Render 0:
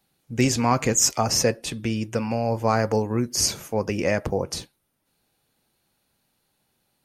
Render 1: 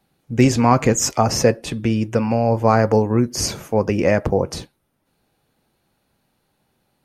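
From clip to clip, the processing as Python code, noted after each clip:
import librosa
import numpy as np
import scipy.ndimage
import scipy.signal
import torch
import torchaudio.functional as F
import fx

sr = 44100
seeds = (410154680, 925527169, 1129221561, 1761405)

y = fx.high_shelf(x, sr, hz=2500.0, db=-9.5)
y = y * librosa.db_to_amplitude(7.0)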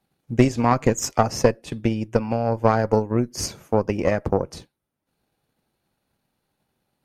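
y = fx.transient(x, sr, attack_db=6, sustain_db=-5)
y = fx.tube_stage(y, sr, drive_db=1.0, bias=0.7)
y = y * librosa.db_to_amplitude(-3.0)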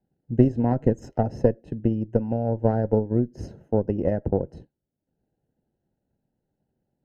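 y = scipy.signal.lfilter(np.full(38, 1.0 / 38), 1.0, x)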